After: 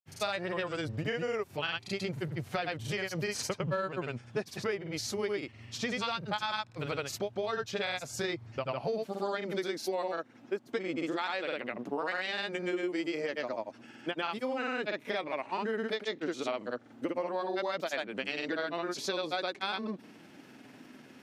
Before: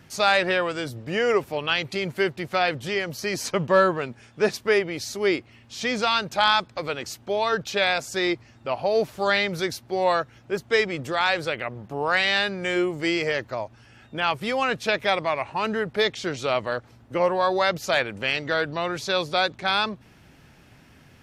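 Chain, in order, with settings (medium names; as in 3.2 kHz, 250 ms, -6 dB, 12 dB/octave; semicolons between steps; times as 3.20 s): granulator, grains 20 per s, pitch spread up and down by 0 st; high-pass sweep 97 Hz -> 260 Hz, 8.56–9.20 s; compression 6:1, threshold -31 dBFS, peak gain reduction 16 dB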